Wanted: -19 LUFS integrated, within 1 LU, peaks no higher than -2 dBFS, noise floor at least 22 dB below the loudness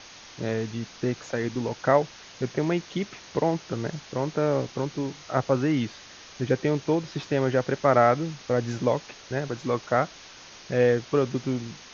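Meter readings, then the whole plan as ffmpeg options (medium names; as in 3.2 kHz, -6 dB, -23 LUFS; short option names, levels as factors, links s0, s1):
noise floor -47 dBFS; noise floor target -49 dBFS; loudness -27.0 LUFS; peak level -6.0 dBFS; loudness target -19.0 LUFS
-> -af "afftdn=nr=6:nf=-47"
-af "volume=2.51,alimiter=limit=0.794:level=0:latency=1"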